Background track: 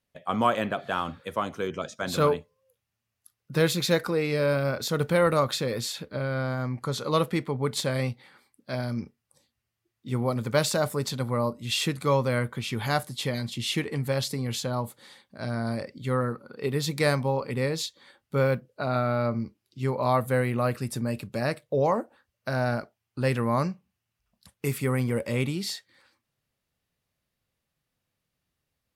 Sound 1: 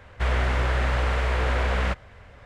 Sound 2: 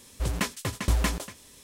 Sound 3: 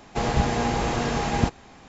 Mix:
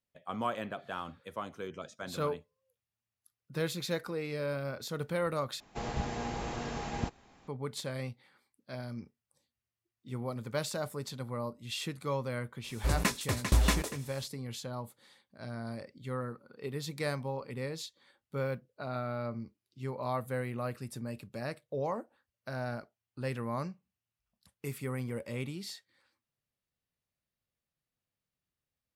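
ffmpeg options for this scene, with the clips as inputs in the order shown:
ffmpeg -i bed.wav -i cue0.wav -i cue1.wav -i cue2.wav -filter_complex "[0:a]volume=-10.5dB[link_01];[3:a]aresample=22050,aresample=44100[link_02];[2:a]bandreject=frequency=3100:width=11[link_03];[link_01]asplit=2[link_04][link_05];[link_04]atrim=end=5.604[link_06];[link_02]atrim=end=1.88,asetpts=PTS-STARTPTS,volume=-12.5dB[link_07];[link_05]atrim=start=7.476[link_08];[link_03]atrim=end=1.63,asetpts=PTS-STARTPTS,volume=-1dB,afade=type=in:duration=0.004:curve=hsin,afade=type=out:start_time=1.626:duration=0.004:curve=hsin,adelay=12640[link_09];[link_06][link_07]acrossfade=duration=0.004:curve1=hsin:curve2=hsin[link_10];[link_10][link_08]acrossfade=duration=0.004:curve1=hsin:curve2=hsin[link_11];[link_11][link_09]amix=inputs=2:normalize=0" out.wav

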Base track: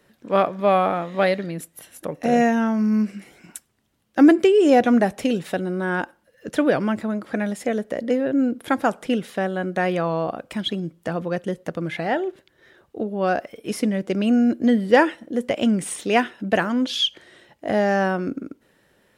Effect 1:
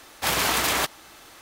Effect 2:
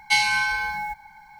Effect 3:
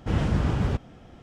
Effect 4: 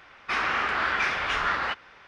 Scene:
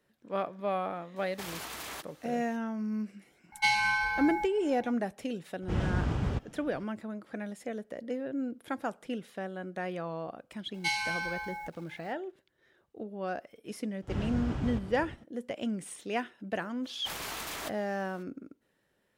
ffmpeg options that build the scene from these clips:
ffmpeg -i bed.wav -i cue0.wav -i cue1.wav -i cue2.wav -filter_complex "[1:a]asplit=2[link_01][link_02];[2:a]asplit=2[link_03][link_04];[3:a]asplit=2[link_05][link_06];[0:a]volume=-14dB[link_07];[link_01]alimiter=limit=-18dB:level=0:latency=1:release=94[link_08];[link_03]highshelf=frequency=2600:gain=-8.5[link_09];[link_04]aeval=exprs='val(0)*gte(abs(val(0)),0.00531)':channel_layout=same[link_10];[link_06]aecho=1:1:363:0.299[link_11];[link_02]aeval=exprs='clip(val(0),-1,0.0794)':channel_layout=same[link_12];[link_08]atrim=end=1.41,asetpts=PTS-STARTPTS,volume=-13dB,afade=type=in:duration=0.004:curve=hsin,afade=type=out:start_time=1.406:duration=0.004:curve=hsin,adelay=1160[link_13];[link_09]atrim=end=1.39,asetpts=PTS-STARTPTS,volume=-3dB,afade=type=in:duration=0.004:curve=hsin,afade=type=out:start_time=1.386:duration=0.004:curve=hsin,adelay=3520[link_14];[link_05]atrim=end=1.22,asetpts=PTS-STARTPTS,volume=-6dB,afade=type=in:duration=0.004:curve=hsin,afade=type=out:start_time=1.216:duration=0.004:curve=hsin,adelay=5620[link_15];[link_10]atrim=end=1.39,asetpts=PTS-STARTPTS,volume=-11dB,afade=type=in:duration=0.004:curve=hsin,afade=type=out:start_time=1.386:duration=0.004:curve=hsin,adelay=473634S[link_16];[link_11]atrim=end=1.22,asetpts=PTS-STARTPTS,volume=-10dB,afade=type=in:duration=0.004:curve=hsin,afade=type=out:start_time=1.216:duration=0.004:curve=hsin,adelay=14020[link_17];[link_12]atrim=end=1.41,asetpts=PTS-STARTPTS,volume=-14.5dB,afade=type=in:duration=0.02,afade=type=out:start_time=1.39:duration=0.02,adelay=16830[link_18];[link_07][link_13][link_14][link_15][link_16][link_17][link_18]amix=inputs=7:normalize=0" out.wav

